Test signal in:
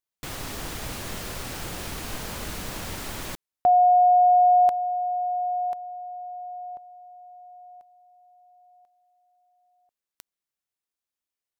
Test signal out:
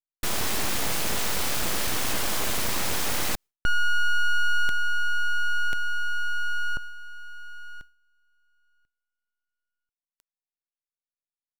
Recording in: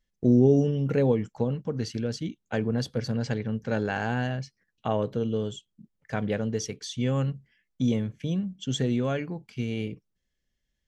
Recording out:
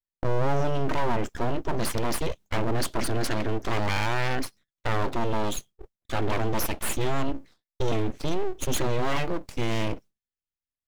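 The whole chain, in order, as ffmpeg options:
-af "agate=range=-33dB:threshold=-43dB:ratio=3:release=297:detection=peak,acontrast=84,adynamicequalizer=threshold=0.02:dfrequency=100:dqfactor=0.78:tfrequency=100:tqfactor=0.78:attack=5:release=100:ratio=0.375:range=2.5:mode=cutabove:tftype=bell,areverse,acompressor=threshold=-27dB:ratio=4:attack=0.78:release=20:knee=1:detection=peak,areverse,aeval=exprs='abs(val(0))':c=same,volume=6.5dB"

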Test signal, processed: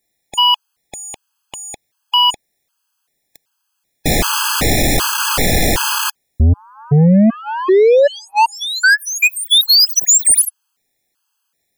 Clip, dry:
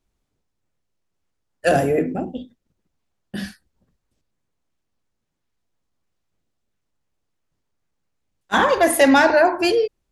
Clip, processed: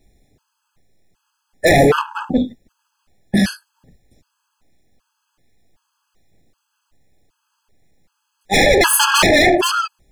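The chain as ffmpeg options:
-af "aeval=exprs='0.708*sin(PI/2*5.01*val(0)/0.708)':c=same,acontrast=60,afftfilt=real='re*gt(sin(2*PI*1.3*pts/sr)*(1-2*mod(floor(b*sr/1024/840),2)),0)':imag='im*gt(sin(2*PI*1.3*pts/sr)*(1-2*mod(floor(b*sr/1024/840),2)),0)':win_size=1024:overlap=0.75,volume=-6dB"

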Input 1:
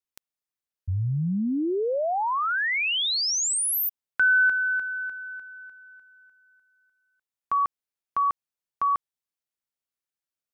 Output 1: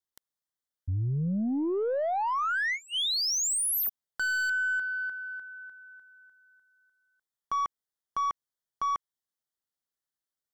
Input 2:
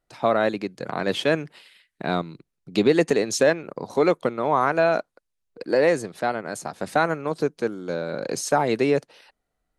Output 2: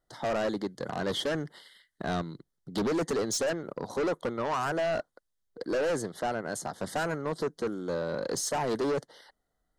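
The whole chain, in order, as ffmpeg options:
-af "asoftclip=type=tanh:threshold=-20.5dB,asuperstop=centerf=2500:order=8:qfactor=2.9,aeval=exprs='0.141*(cos(1*acos(clip(val(0)/0.141,-1,1)))-cos(1*PI/2))+0.01*(cos(2*acos(clip(val(0)/0.141,-1,1)))-cos(2*PI/2))+0.0355*(cos(5*acos(clip(val(0)/0.141,-1,1)))-cos(5*PI/2))+0.0141*(cos(7*acos(clip(val(0)/0.141,-1,1)))-cos(7*PI/2))':c=same,volume=-5dB"

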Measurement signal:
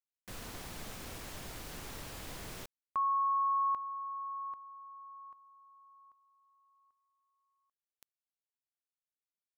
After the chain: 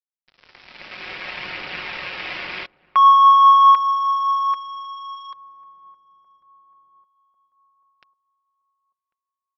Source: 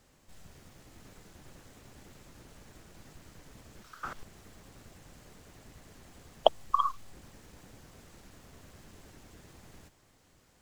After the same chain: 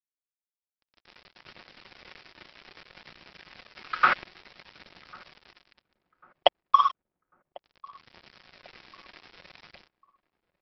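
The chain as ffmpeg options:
-filter_complex "[0:a]highpass=f=530:p=1,aemphasis=mode=production:type=50fm,aecho=1:1:5.5:0.49,dynaudnorm=f=370:g=5:m=14dB,asplit=2[a][b];[b]volume=17.5dB,asoftclip=hard,volume=-17.5dB,volume=-3.5dB[c];[a][c]amix=inputs=2:normalize=0,lowpass=f=2.4k:t=q:w=2.9,aresample=11025,aeval=exprs='sgn(val(0))*max(abs(val(0))-0.0211,0)':c=same,aresample=44100,aphaser=in_gain=1:out_gain=1:delay=3.6:decay=0.21:speed=0.61:type=triangular,asplit=2[d][e];[e]adelay=1096,lowpass=f=900:p=1,volume=-22.5dB,asplit=2[f][g];[g]adelay=1096,lowpass=f=900:p=1,volume=0.54,asplit=2[h][i];[i]adelay=1096,lowpass=f=900:p=1,volume=0.54,asplit=2[j][k];[k]adelay=1096,lowpass=f=900:p=1,volume=0.54[l];[d][f][h][j][l]amix=inputs=5:normalize=0,volume=-1dB"

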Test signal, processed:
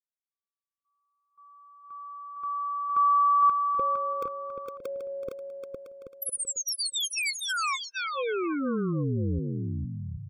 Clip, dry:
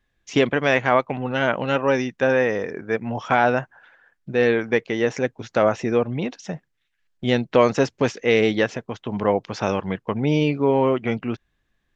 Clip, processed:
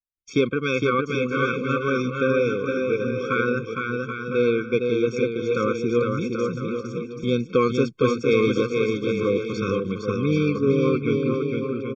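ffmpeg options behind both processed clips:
-af "agate=range=-33dB:threshold=-52dB:ratio=3:detection=peak,aecho=1:1:460|782|1007|1165|1276:0.631|0.398|0.251|0.158|0.1,afftfilt=real='re*eq(mod(floor(b*sr/1024/530),2),0)':imag='im*eq(mod(floor(b*sr/1024/530),2),0)':win_size=1024:overlap=0.75,volume=-1.5dB"

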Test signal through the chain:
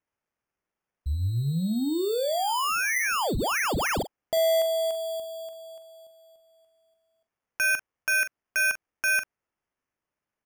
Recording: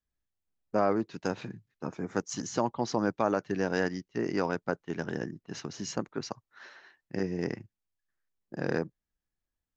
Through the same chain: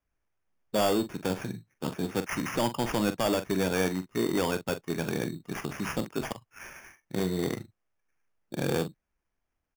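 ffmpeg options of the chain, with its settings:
-filter_complex "[0:a]acrusher=samples=11:mix=1:aa=0.000001,asoftclip=type=tanh:threshold=-24.5dB,asplit=2[a][b];[b]adelay=43,volume=-11dB[c];[a][c]amix=inputs=2:normalize=0,volume=5dB"

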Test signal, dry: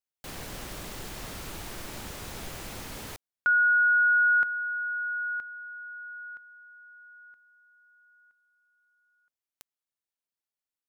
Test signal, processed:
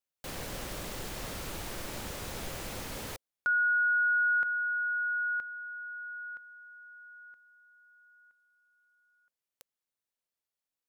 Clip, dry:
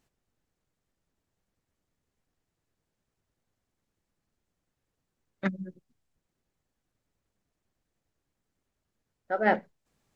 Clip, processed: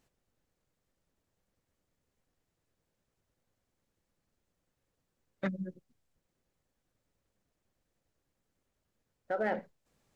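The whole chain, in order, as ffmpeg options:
-af "equalizer=f=530:w=4.5:g=4.5,acompressor=threshold=-25dB:ratio=4:attack=0.1:release=77:knee=1:detection=rms"

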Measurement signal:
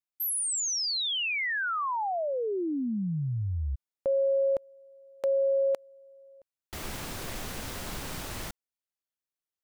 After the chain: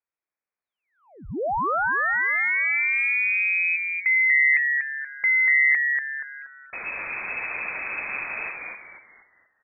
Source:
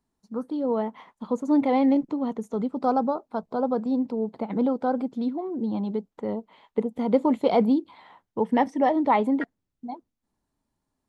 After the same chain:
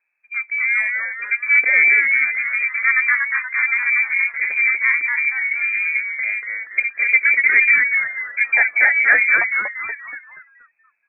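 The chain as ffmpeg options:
-filter_complex "[0:a]asplit=6[a][b][c][d][e][f];[b]adelay=238,afreqshift=140,volume=-4dB[g];[c]adelay=476,afreqshift=280,volume=-12.4dB[h];[d]adelay=714,afreqshift=420,volume=-20.8dB[i];[e]adelay=952,afreqshift=560,volume=-29.2dB[j];[f]adelay=1190,afreqshift=700,volume=-37.6dB[k];[a][g][h][i][j][k]amix=inputs=6:normalize=0,lowpass=f=2.2k:t=q:w=0.5098,lowpass=f=2.2k:t=q:w=0.6013,lowpass=f=2.2k:t=q:w=0.9,lowpass=f=2.2k:t=q:w=2.563,afreqshift=-2600,volume=5.5dB"

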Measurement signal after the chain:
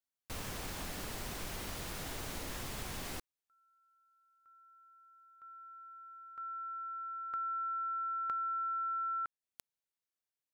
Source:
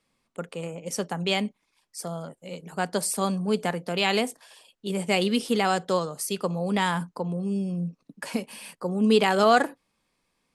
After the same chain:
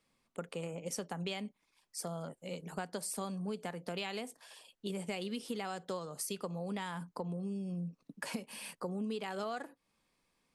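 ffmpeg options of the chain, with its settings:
-af "acompressor=threshold=-32dB:ratio=10,volume=-3.5dB"

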